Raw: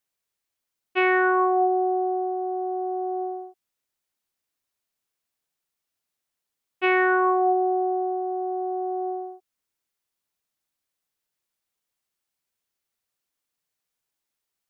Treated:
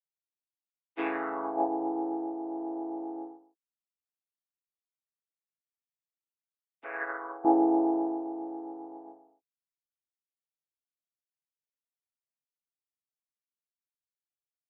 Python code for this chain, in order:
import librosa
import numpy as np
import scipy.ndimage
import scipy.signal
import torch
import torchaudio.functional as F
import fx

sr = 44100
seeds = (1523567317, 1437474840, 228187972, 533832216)

y = fx.chord_vocoder(x, sr, chord='major triad', root=45)
y = fx.cabinet(y, sr, low_hz=490.0, low_slope=24, high_hz=2100.0, hz=(560.0, 870.0, 1600.0), db=(4, -7, 8), at=(6.84, 7.45))
y = fx.upward_expand(y, sr, threshold_db=-35.0, expansion=2.5)